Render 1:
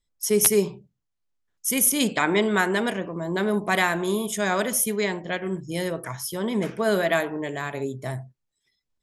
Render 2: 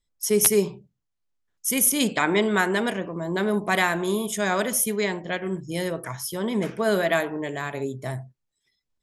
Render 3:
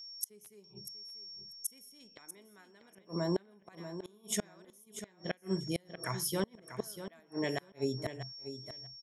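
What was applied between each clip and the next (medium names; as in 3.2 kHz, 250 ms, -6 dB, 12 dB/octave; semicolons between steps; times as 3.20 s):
no audible change
whistle 5.5 kHz -42 dBFS; inverted gate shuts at -17 dBFS, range -34 dB; feedback delay 641 ms, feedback 15%, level -11 dB; trim -3.5 dB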